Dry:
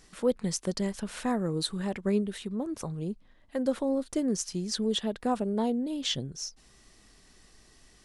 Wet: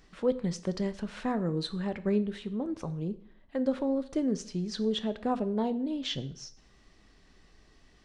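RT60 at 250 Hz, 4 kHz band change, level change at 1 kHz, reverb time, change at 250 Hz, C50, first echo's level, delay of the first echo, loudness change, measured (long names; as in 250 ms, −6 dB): 0.60 s, −4.0 dB, −1.5 dB, 0.60 s, −0.5 dB, 16.5 dB, no echo audible, no echo audible, −1.0 dB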